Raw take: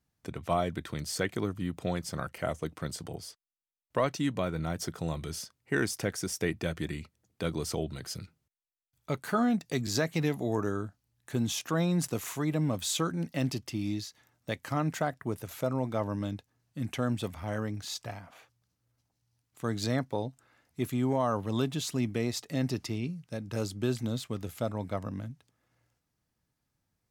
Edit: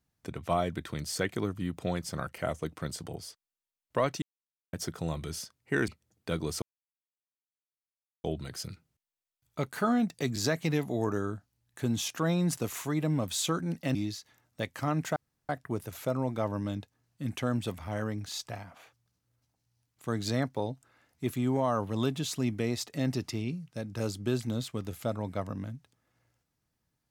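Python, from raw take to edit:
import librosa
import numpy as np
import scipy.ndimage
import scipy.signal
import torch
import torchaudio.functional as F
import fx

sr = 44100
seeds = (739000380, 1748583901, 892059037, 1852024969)

y = fx.edit(x, sr, fx.silence(start_s=4.22, length_s=0.51),
    fx.cut(start_s=5.88, length_s=1.13),
    fx.insert_silence(at_s=7.75, length_s=1.62),
    fx.cut(start_s=13.46, length_s=0.38),
    fx.insert_room_tone(at_s=15.05, length_s=0.33), tone=tone)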